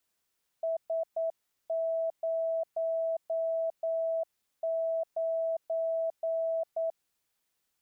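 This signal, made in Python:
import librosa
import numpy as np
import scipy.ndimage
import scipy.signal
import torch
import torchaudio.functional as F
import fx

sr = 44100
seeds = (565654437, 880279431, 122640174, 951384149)

y = fx.morse(sr, text='S09', wpm=9, hz=655.0, level_db=-27.5)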